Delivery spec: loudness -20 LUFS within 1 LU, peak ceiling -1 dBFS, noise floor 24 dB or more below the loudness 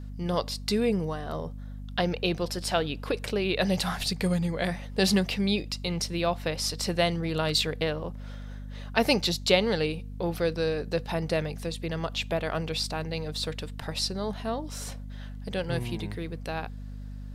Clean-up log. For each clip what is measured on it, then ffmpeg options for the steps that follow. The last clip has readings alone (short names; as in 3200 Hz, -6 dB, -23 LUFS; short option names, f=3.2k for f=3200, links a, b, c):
hum 50 Hz; harmonics up to 250 Hz; hum level -36 dBFS; loudness -29.0 LUFS; peak -6.5 dBFS; loudness target -20.0 LUFS
-> -af "bandreject=f=50:t=h:w=6,bandreject=f=100:t=h:w=6,bandreject=f=150:t=h:w=6,bandreject=f=200:t=h:w=6,bandreject=f=250:t=h:w=6"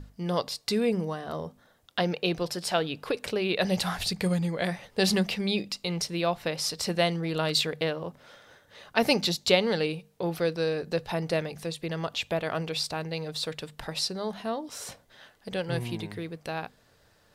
hum none; loudness -29.0 LUFS; peak -6.0 dBFS; loudness target -20.0 LUFS
-> -af "volume=9dB,alimiter=limit=-1dB:level=0:latency=1"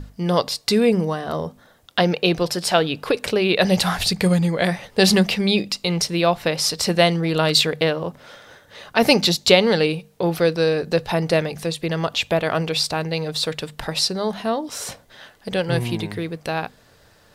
loudness -20.5 LUFS; peak -1.0 dBFS; noise floor -54 dBFS